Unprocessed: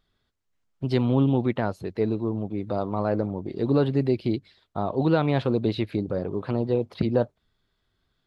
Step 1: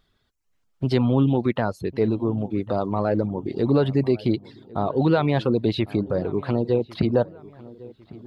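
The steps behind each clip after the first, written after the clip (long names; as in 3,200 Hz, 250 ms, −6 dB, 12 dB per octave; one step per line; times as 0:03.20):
reverb reduction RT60 0.54 s
in parallel at −0.5 dB: brickwall limiter −20.5 dBFS, peak gain reduction 10.5 dB
on the sum: feedback echo with a low-pass in the loop 1,102 ms, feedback 44%, low-pass 2,200 Hz, level −20 dB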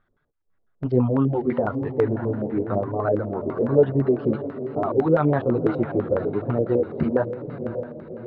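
feedback delay with all-pass diffusion 572 ms, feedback 51%, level −9.5 dB
multi-voice chorus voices 2, 1 Hz, delay 10 ms, depth 3.3 ms
auto-filter low-pass square 6 Hz 540–1,500 Hz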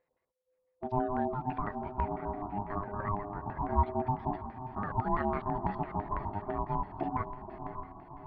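ring modulation 510 Hz
level −8.5 dB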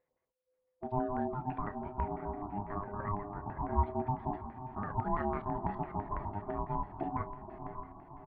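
high-frequency loss of the air 260 metres
double-tracking delay 30 ms −14 dB
level −2 dB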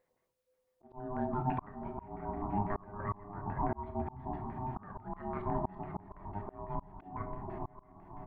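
on a send at −9 dB: convolution reverb RT60 0.70 s, pre-delay 3 ms
on the sum: volume swells 549 ms
level +4.5 dB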